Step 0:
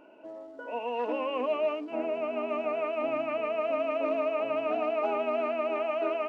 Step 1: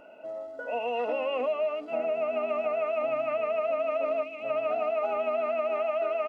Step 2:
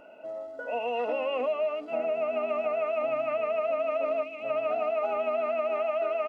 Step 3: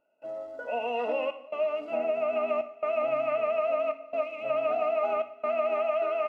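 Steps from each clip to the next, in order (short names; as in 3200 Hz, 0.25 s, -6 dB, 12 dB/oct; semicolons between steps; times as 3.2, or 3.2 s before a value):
comb 1.5 ms, depth 67%; compressor, threshold -28 dBFS, peak gain reduction 8 dB; spectral gain 4.23–4.44, 400–2000 Hz -13 dB; gain +2.5 dB
nothing audible
step gate "..xxxxxxxxxx" 138 bpm -24 dB; reverb, pre-delay 3 ms, DRR 9 dB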